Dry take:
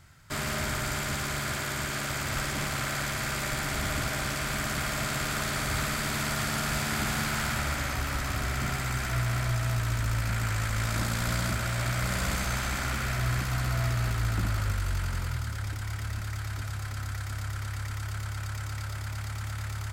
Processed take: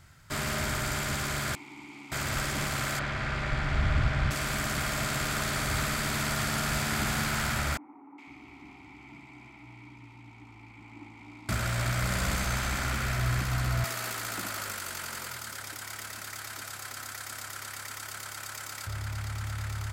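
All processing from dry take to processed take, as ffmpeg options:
-filter_complex "[0:a]asettb=1/sr,asplit=3[a][b][c];[a]atrim=end=1.554[d];[b]atrim=start=1.55:end=2.12,asetpts=PTS-STARTPTS,afade=t=in:d=0.004:c=qsin,afade=t=out:st=0.566:d=0.004:c=qsin,asplit=3[e][f][g];[e]bandpass=f=300:t=q:w=8,volume=0dB[h];[f]bandpass=f=870:t=q:w=8,volume=-6dB[i];[g]bandpass=f=2.24k:t=q:w=8,volume=-9dB[j];[h][i][j]amix=inputs=3:normalize=0,highshelf=f=3.8k:g=10[k];[c]atrim=start=2.116[l];[d][k]acrossfade=d=0.004:c1=hsin:c2=qsin[m];[m][l]acrossfade=d=0.004:c1=qsin:c2=hsin,asettb=1/sr,asplit=3[n][o][p];[n]atrim=end=2.994[q];[o]atrim=start=2.99:end=4.31,asetpts=PTS-STARTPTS,afade=t=in:d=0.004:c=qsin,afade=t=out:st=1.316:d=0.004:c=qsin,lowpass=3.1k,asubboost=boost=8.5:cutoff=150[r];[p]atrim=start=4.306[s];[q][r]acrossfade=d=0.004:c1=hsin:c2=qsin[t];[t][s]acrossfade=d=0.004:c1=qsin:c2=hsin,asettb=1/sr,asplit=3[u][v][w];[u]atrim=end=7.774[x];[v]atrim=start=7.77:end=11.49,asetpts=PTS-STARTPTS,afade=t=in:d=0.004:c=qsin,afade=t=out:st=3.716:d=0.004:c=qsin,asplit=3[y][z][aa];[y]bandpass=f=300:t=q:w=8,volume=0dB[ab];[z]bandpass=f=870:t=q:w=8,volume=-6dB[ac];[aa]bandpass=f=2.24k:t=q:w=8,volume=-9dB[ad];[ab][ac][ad]amix=inputs=3:normalize=0,acrossover=split=230|1300[ae][af][ag];[ag]adelay=410[ah];[ae]adelay=500[ai];[ai][af][ah]amix=inputs=3:normalize=0,atrim=end_sample=164052[aj];[w]atrim=start=11.486[ak];[x][aj]acrossfade=d=0.004:c1=hsin:c2=qsin[al];[al][ak]acrossfade=d=0.004:c1=qsin:c2=hsin,asettb=1/sr,asplit=3[am][an][ao];[am]atrim=end=13.844[ap];[an]atrim=start=13.84:end=18.87,asetpts=PTS-STARTPTS,afade=t=in:d=0.004:c=qsin,afade=t=out:st=5.026:d=0.004:c=qsin,highpass=320,highshelf=f=5.8k:g=9[aq];[ao]atrim=start=18.866[ar];[ap][aq]acrossfade=d=0.004:c1=hsin:c2=qsin[as];[as][ar]acrossfade=d=0.004:c1=qsin:c2=hsin"

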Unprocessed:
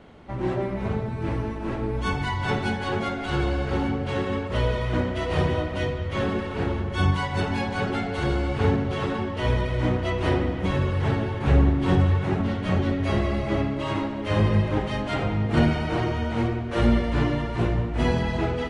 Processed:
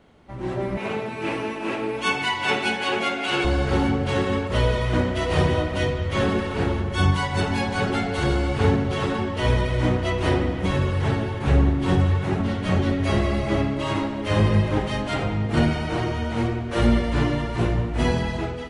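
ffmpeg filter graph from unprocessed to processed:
-filter_complex "[0:a]asettb=1/sr,asplit=3[a][b][c];[a]atrim=end=0.774[d];[b]atrim=start=0.77:end=3.45,asetpts=PTS-STARTPTS,afade=t=in:d=0.004:c=qsin,afade=t=out:st=2.676:d=0.004:c=qsin,highpass=280,equalizer=f=2.6k:w=2.9:g=10[e];[c]atrim=start=3.446[f];[d][e]acrossfade=d=0.004:c1=hsin:c2=qsin[g];[g][f]acrossfade=d=0.004:c1=qsin:c2=hsin,dynaudnorm=f=250:g=5:m=11.5dB,highshelf=f=6.1k:g=9,volume=-6.5dB"

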